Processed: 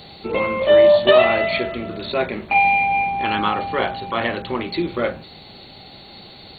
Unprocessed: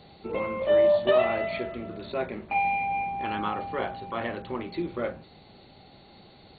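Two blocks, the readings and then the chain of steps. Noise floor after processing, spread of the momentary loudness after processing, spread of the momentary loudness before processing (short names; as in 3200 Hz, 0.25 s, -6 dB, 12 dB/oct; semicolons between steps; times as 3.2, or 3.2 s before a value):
-42 dBFS, 13 LU, 13 LU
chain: high shelf 2900 Hz +12 dB; gain +8 dB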